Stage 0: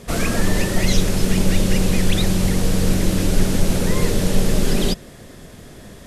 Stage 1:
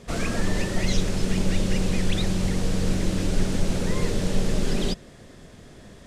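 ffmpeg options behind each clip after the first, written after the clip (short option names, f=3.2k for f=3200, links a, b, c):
-af "equalizer=f=12k:t=o:w=0.43:g=-14,volume=-6dB"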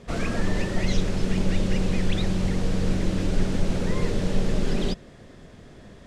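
-af "lowpass=f=3.7k:p=1"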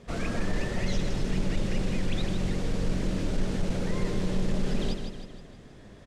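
-af "aecho=1:1:157|314|471|628|785|942:0.422|0.211|0.105|0.0527|0.0264|0.0132,asoftclip=type=tanh:threshold=-11.5dB,volume=-4dB"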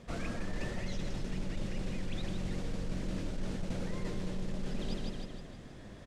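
-af "bandreject=f=420:w=12,areverse,acompressor=threshold=-32dB:ratio=6,areverse"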